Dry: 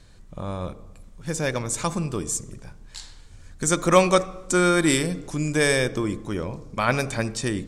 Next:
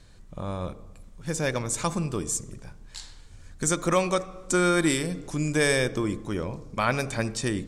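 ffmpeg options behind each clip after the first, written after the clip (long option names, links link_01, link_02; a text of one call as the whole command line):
ffmpeg -i in.wav -af "alimiter=limit=-9.5dB:level=0:latency=1:release=378,volume=-1.5dB" out.wav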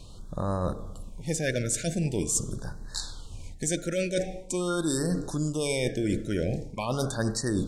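ffmpeg -i in.wav -af "areverse,acompressor=threshold=-30dB:ratio=16,areverse,afftfilt=real='re*(1-between(b*sr/1024,940*pow(2700/940,0.5+0.5*sin(2*PI*0.44*pts/sr))/1.41,940*pow(2700/940,0.5+0.5*sin(2*PI*0.44*pts/sr))*1.41))':imag='im*(1-between(b*sr/1024,940*pow(2700/940,0.5+0.5*sin(2*PI*0.44*pts/sr))/1.41,940*pow(2700/940,0.5+0.5*sin(2*PI*0.44*pts/sr))*1.41))':win_size=1024:overlap=0.75,volume=7dB" out.wav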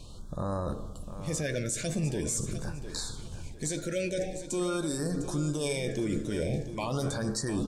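ffmpeg -i in.wav -filter_complex "[0:a]alimiter=limit=-22.5dB:level=0:latency=1:release=21,asplit=2[link_01][link_02];[link_02]adelay=14,volume=-11.5dB[link_03];[link_01][link_03]amix=inputs=2:normalize=0,aecho=1:1:703|1406|2109:0.266|0.0851|0.0272" out.wav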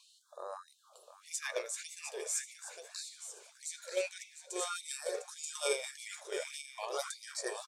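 ffmpeg -i in.wav -af "aecho=1:1:932:0.422,agate=range=-9dB:threshold=-29dB:ratio=16:detection=peak,afftfilt=real='re*gte(b*sr/1024,350*pow(2000/350,0.5+0.5*sin(2*PI*1.7*pts/sr)))':imag='im*gte(b*sr/1024,350*pow(2000/350,0.5+0.5*sin(2*PI*1.7*pts/sr)))':win_size=1024:overlap=0.75,volume=2dB" out.wav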